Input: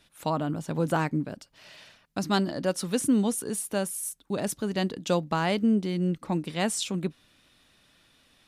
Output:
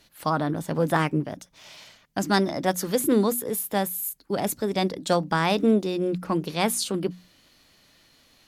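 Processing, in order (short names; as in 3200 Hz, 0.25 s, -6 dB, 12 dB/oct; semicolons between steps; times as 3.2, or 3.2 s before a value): formant shift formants +3 st; notches 60/120/180/240 Hz; gain +3.5 dB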